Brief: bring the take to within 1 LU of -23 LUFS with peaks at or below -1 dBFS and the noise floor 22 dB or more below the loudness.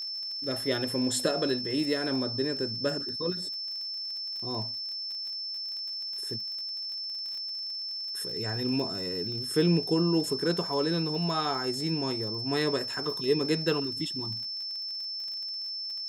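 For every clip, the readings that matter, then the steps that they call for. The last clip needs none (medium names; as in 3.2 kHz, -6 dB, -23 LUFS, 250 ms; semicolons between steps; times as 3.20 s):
tick rate 36 per s; steady tone 5.3 kHz; tone level -33 dBFS; loudness -29.5 LUFS; peak level -13.0 dBFS; loudness target -23.0 LUFS
-> de-click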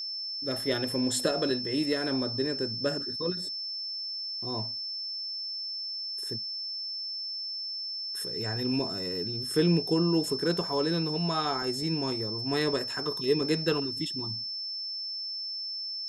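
tick rate 0 per s; steady tone 5.3 kHz; tone level -33 dBFS
-> band-stop 5.3 kHz, Q 30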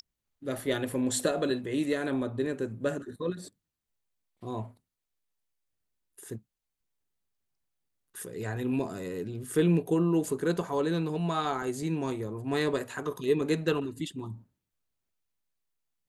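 steady tone not found; loudness -30.5 LUFS; peak level -14.0 dBFS; loudness target -23.0 LUFS
-> trim +7.5 dB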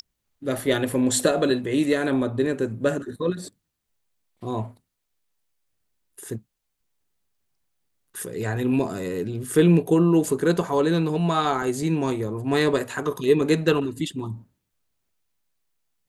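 loudness -23.0 LUFS; peak level -6.5 dBFS; noise floor -79 dBFS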